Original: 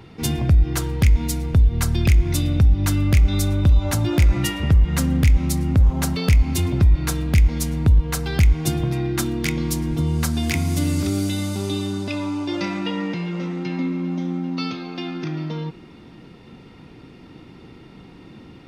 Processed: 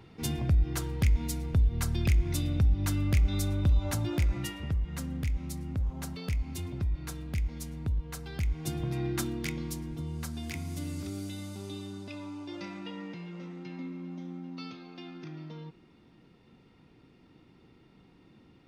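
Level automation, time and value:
0:03.91 −9.5 dB
0:04.84 −16 dB
0:08.39 −16 dB
0:09.07 −8 dB
0:09.98 −15.5 dB

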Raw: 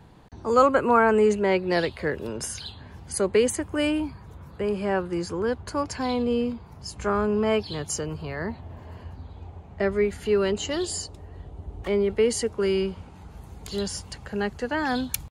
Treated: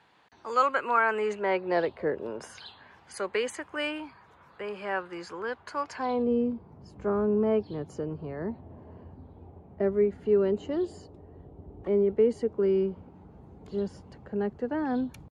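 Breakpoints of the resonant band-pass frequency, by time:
resonant band-pass, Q 0.8
0:01.02 2,200 Hz
0:02.06 470 Hz
0:02.84 1,600 Hz
0:05.88 1,600 Hz
0:06.31 310 Hz

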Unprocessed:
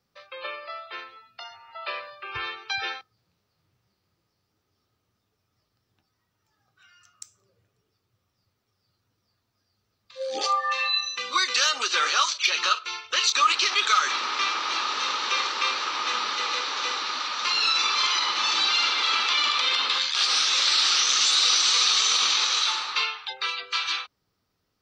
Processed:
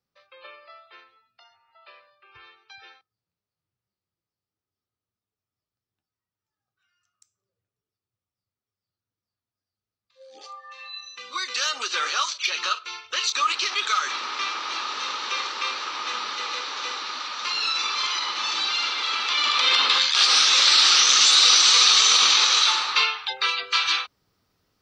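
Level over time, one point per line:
0:00.70 −10 dB
0:01.95 −17.5 dB
0:10.70 −17.5 dB
0:11.17 −9 dB
0:11.71 −2.5 dB
0:19.19 −2.5 dB
0:19.74 +5 dB

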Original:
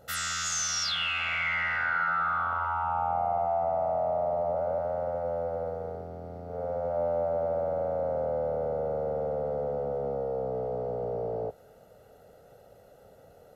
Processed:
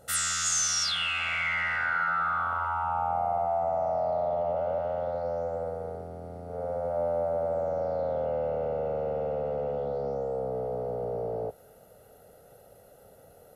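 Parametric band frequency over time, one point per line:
parametric band +13.5 dB 0.56 octaves
0:03.52 9,000 Hz
0:04.45 3,000 Hz
0:04.97 3,000 Hz
0:05.70 9,600 Hz
0:07.42 9,600 Hz
0:08.32 2,700 Hz
0:09.71 2,700 Hz
0:10.51 11,000 Hz

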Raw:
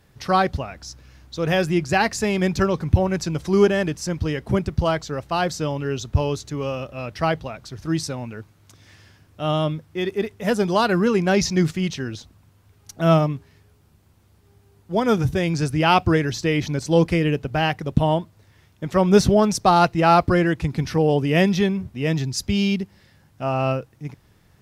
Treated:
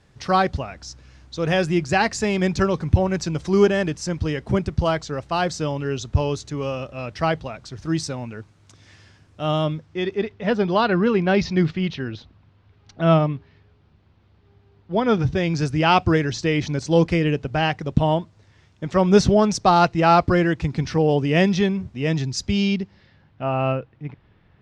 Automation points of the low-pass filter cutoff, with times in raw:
low-pass filter 24 dB per octave
0:09.57 8,600 Hz
0:10.48 4,200 Hz
0:14.94 4,200 Hz
0:15.72 7,400 Hz
0:22.50 7,400 Hz
0:23.43 3,400 Hz

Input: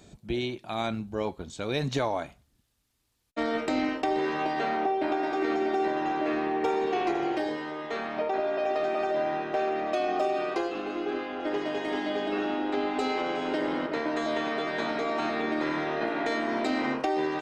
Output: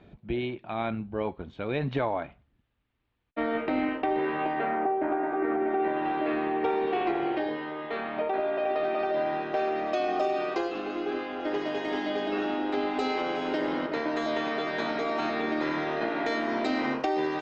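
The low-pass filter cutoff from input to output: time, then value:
low-pass filter 24 dB per octave
0:04.45 2,900 Hz
0:04.93 1,900 Hz
0:05.59 1,900 Hz
0:06.10 3,600 Hz
0:08.67 3,600 Hz
0:09.85 6,400 Hz

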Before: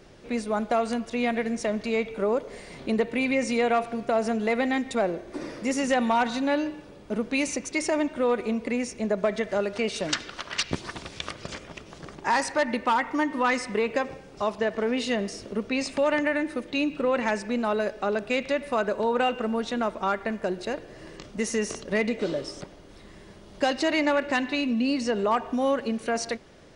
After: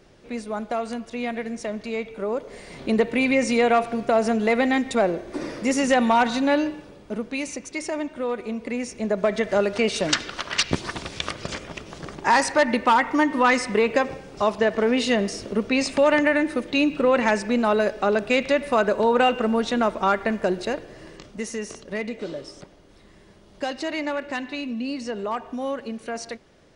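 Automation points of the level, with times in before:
0:02.22 −2.5 dB
0:02.99 +4.5 dB
0:06.63 +4.5 dB
0:07.38 −3 dB
0:08.43 −3 dB
0:09.57 +5.5 dB
0:20.54 +5.5 dB
0:21.58 −4 dB

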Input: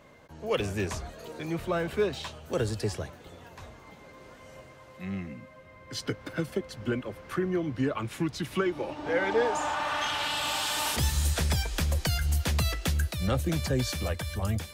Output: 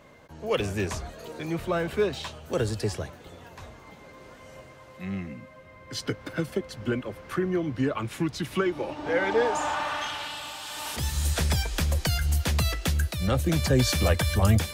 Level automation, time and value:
0:09.76 +2 dB
0:10.58 −9 dB
0:11.37 +2 dB
0:13.26 +2 dB
0:14.14 +9 dB

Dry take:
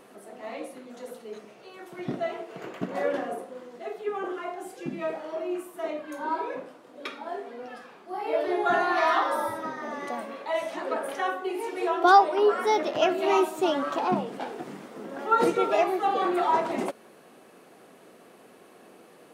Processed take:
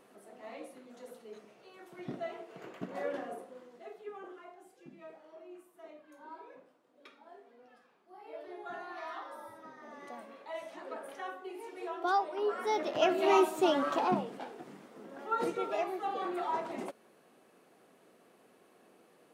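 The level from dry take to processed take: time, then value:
0:03.52 −9 dB
0:04.75 −19.5 dB
0:09.41 −19.5 dB
0:10.12 −13 dB
0:12.27 −13 dB
0:13.21 −2.5 dB
0:14.00 −2.5 dB
0:14.53 −10.5 dB

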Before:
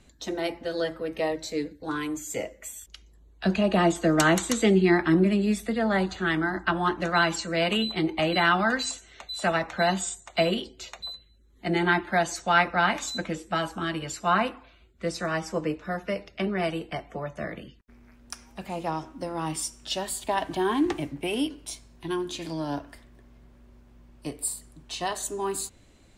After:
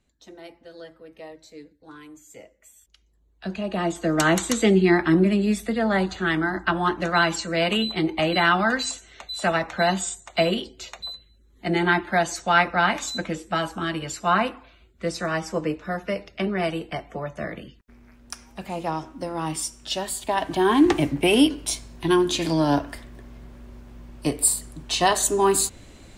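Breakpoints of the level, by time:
0:02.60 −13.5 dB
0:03.76 −4.5 dB
0:04.40 +2.5 dB
0:20.34 +2.5 dB
0:21.09 +10.5 dB

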